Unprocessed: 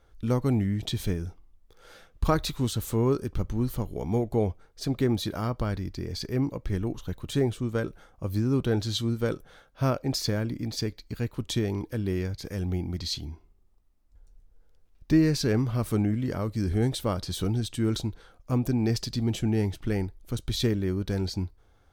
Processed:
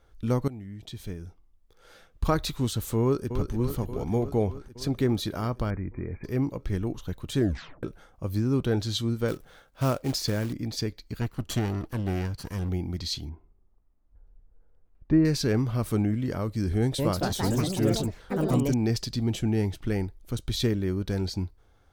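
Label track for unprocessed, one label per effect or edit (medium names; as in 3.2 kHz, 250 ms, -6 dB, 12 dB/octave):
0.480000	2.510000	fade in, from -18 dB
3.010000	3.520000	echo throw 290 ms, feedback 75%, level -8 dB
5.700000	6.240000	brick-wall FIR low-pass 2.5 kHz
7.370000	7.370000	tape stop 0.46 s
9.280000	10.530000	short-mantissa float mantissa of 2-bit
11.210000	12.690000	comb filter that takes the minimum delay 0.68 ms
13.290000	15.250000	low-pass 1.5 kHz
16.760000	18.970000	ever faster or slower copies 225 ms, each echo +4 st, echoes 3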